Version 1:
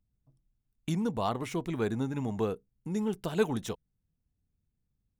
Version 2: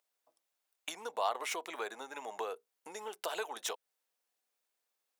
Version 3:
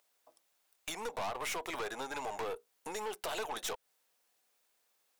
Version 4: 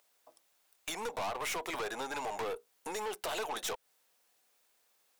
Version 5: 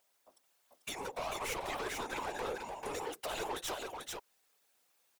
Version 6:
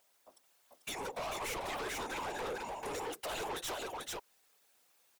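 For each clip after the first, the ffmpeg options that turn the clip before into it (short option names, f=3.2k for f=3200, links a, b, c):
-af "acompressor=threshold=-37dB:ratio=6,highpass=f=560:w=0.5412,highpass=f=560:w=1.3066,volume=9.5dB"
-af "acompressor=threshold=-40dB:ratio=2,aeval=exprs='(tanh(158*val(0)+0.35)-tanh(0.35))/158':c=same,volume=10dB"
-af "asoftclip=type=tanh:threshold=-34dB,volume=3.5dB"
-af "aecho=1:1:442:0.668,afftfilt=real='hypot(re,im)*cos(2*PI*random(0))':imag='hypot(re,im)*sin(2*PI*random(1))':win_size=512:overlap=0.75,volume=3dB"
-af "asoftclip=type=tanh:threshold=-38dB,volume=3.5dB"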